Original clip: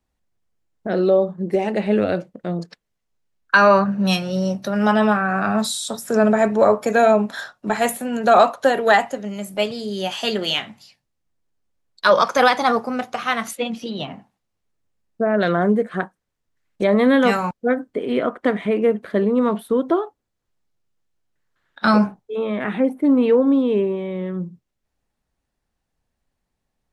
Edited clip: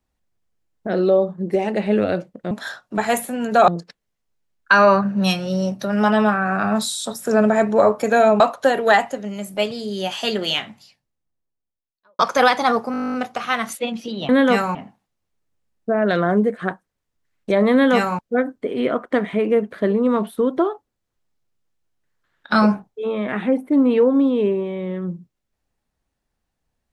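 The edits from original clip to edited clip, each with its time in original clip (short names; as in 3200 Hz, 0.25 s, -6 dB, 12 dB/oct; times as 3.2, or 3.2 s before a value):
7.23–8.4 move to 2.51
10.61–12.19 studio fade out
12.92 stutter 0.02 s, 12 plays
17.04–17.5 copy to 14.07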